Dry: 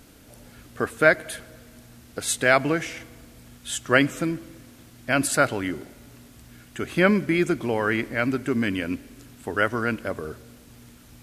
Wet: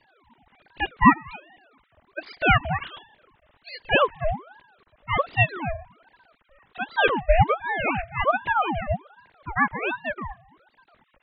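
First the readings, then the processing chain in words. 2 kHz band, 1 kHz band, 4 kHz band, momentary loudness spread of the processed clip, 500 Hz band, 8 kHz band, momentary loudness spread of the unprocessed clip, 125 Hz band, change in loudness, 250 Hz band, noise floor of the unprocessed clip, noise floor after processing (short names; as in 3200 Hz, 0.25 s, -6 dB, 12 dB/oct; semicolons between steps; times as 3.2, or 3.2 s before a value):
-0.5 dB, +6.0 dB, 0.0 dB, 19 LU, -2.5 dB, under -40 dB, 18 LU, +2.0 dB, 0.0 dB, -4.5 dB, -51 dBFS, -67 dBFS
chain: sine-wave speech; ring modulator with a swept carrier 800 Hz, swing 65%, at 1.3 Hz; gain +3 dB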